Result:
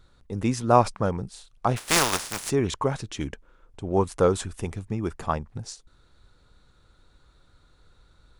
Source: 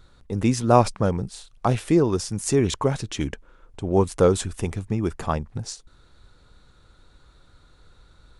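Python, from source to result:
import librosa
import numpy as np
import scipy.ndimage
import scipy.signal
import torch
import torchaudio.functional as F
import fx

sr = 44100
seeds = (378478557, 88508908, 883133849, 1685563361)

y = fx.spec_flatten(x, sr, power=0.23, at=(1.76, 2.49), fade=0.02)
y = fx.dynamic_eq(y, sr, hz=1100.0, q=0.8, threshold_db=-34.0, ratio=4.0, max_db=5)
y = y * 10.0 ** (-4.5 / 20.0)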